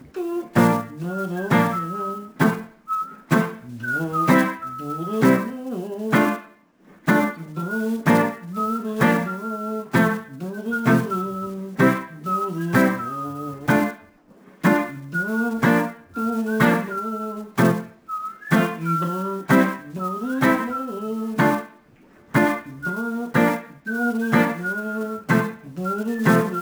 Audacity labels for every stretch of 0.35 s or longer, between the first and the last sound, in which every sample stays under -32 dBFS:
6.410000	7.070000	silence
13.940000	14.640000	silence
21.660000	22.340000	silence